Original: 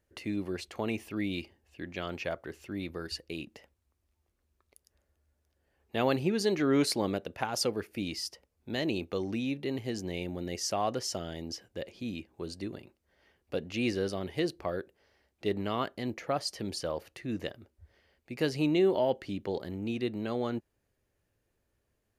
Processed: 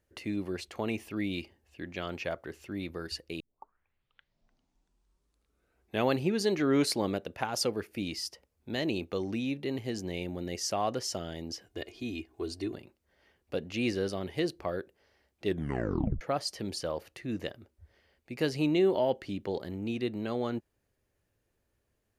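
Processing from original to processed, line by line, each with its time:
3.40 s: tape start 2.71 s
11.66–12.75 s: comb 2.8 ms, depth 78%
15.46 s: tape stop 0.75 s

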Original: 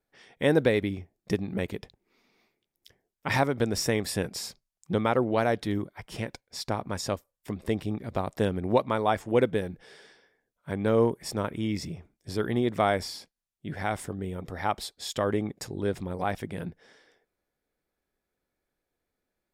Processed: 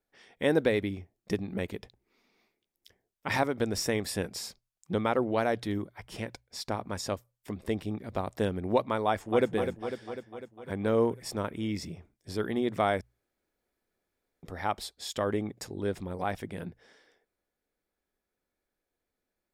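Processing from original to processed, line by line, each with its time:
9.07–9.48 s: echo throw 250 ms, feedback 65%, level -7 dB
13.01–14.43 s: room tone
whole clip: peaking EQ 140 Hz -6 dB 0.33 oct; hum notches 60/120 Hz; trim -2.5 dB

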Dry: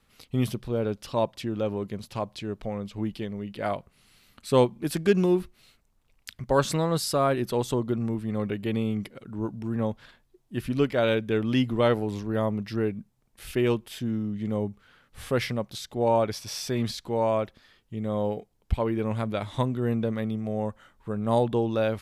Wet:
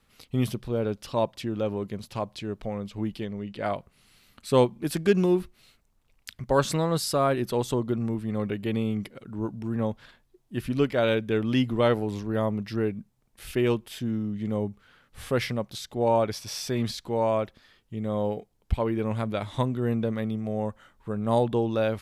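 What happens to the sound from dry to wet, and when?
3.25–3.75 s: low-pass 8.8 kHz

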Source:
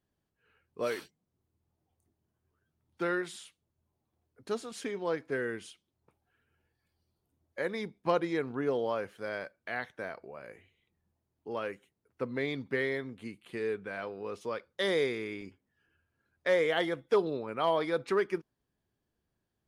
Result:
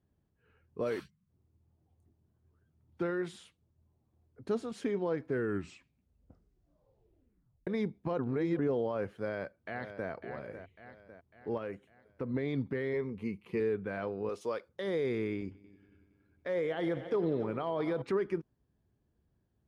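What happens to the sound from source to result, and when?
1.00–1.29 s: time-frequency box 230–1000 Hz -17 dB
5.28 s: tape stop 2.39 s
8.19–8.59 s: reverse
9.18–10.10 s: echo throw 550 ms, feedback 50%, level -11.5 dB
11.57–12.34 s: compression 3:1, threshold -38 dBFS
12.93–13.60 s: rippled EQ curve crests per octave 0.82, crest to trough 10 dB
14.29–14.69 s: tone controls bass -12 dB, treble +10 dB
15.36–18.02 s: multi-head delay 93 ms, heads all three, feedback 59%, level -23.5 dB
whole clip: peak limiter -27 dBFS; high-pass 47 Hz; tilt EQ -3 dB/octave

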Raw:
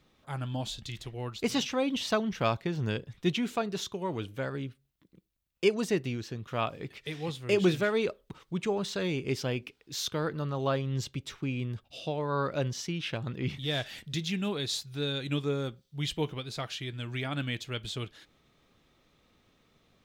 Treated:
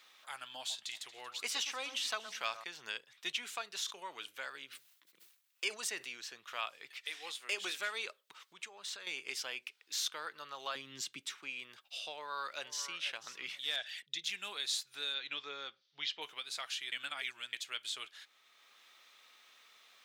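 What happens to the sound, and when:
0.58–2.64 s: echo whose repeats swap between lows and highs 116 ms, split 1.7 kHz, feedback 57%, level -12 dB
3.78–6.15 s: decay stretcher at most 120 dB/s
7.04–7.79 s: high-pass 200 Hz 24 dB/octave
8.39–9.07 s: compression 10:1, threshold -38 dBFS
10.75–11.38 s: resonant low shelf 390 Hz +10 dB, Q 1.5
12.11–12.99 s: echo throw 490 ms, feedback 15%, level -14 dB
13.76–14.24 s: resonances exaggerated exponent 1.5
15.14–16.22 s: steep low-pass 5.5 kHz
16.92–17.53 s: reverse
whole clip: high-pass 1.3 kHz 12 dB/octave; dynamic bell 8.8 kHz, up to +5 dB, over -58 dBFS, Q 1.3; three bands compressed up and down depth 40%; trim -1.5 dB

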